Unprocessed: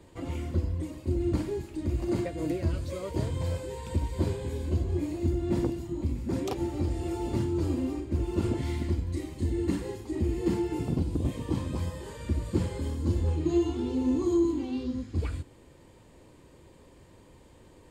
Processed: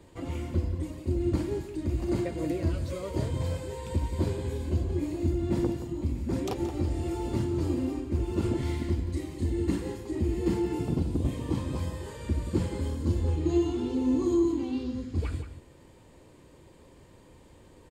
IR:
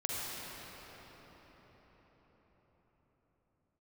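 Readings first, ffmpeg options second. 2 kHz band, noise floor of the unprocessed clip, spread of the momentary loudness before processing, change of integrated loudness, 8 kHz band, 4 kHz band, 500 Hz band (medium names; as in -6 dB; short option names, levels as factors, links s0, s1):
+0.5 dB, -55 dBFS, 6 LU, +0.5 dB, 0.0 dB, +0.5 dB, +0.5 dB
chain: -filter_complex "[0:a]asplit=2[s0][s1];[s1]adelay=174.9,volume=0.316,highshelf=f=4000:g=-3.94[s2];[s0][s2]amix=inputs=2:normalize=0"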